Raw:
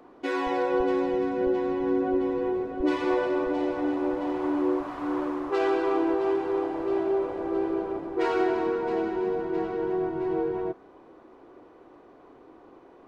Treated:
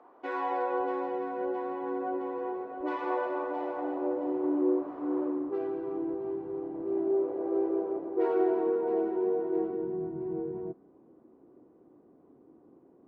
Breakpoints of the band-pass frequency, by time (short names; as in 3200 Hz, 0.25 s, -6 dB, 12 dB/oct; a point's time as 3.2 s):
band-pass, Q 1.3
3.69 s 880 Hz
4.36 s 390 Hz
5.27 s 390 Hz
5.71 s 160 Hz
6.6 s 160 Hz
7.47 s 450 Hz
9.52 s 450 Hz
9.94 s 190 Hz